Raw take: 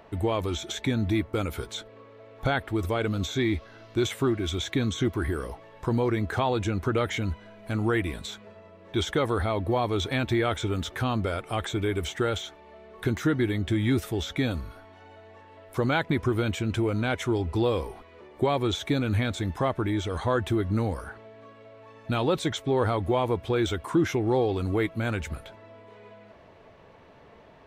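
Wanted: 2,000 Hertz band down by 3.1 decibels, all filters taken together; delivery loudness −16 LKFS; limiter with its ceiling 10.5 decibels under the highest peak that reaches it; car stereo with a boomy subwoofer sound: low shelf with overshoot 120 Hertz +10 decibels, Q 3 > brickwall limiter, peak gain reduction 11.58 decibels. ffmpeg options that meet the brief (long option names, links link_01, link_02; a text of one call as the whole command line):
ffmpeg -i in.wav -af "equalizer=frequency=2000:width_type=o:gain=-4,alimiter=limit=-23.5dB:level=0:latency=1,lowshelf=frequency=120:width_type=q:width=3:gain=10,volume=13.5dB,alimiter=limit=-7dB:level=0:latency=1" out.wav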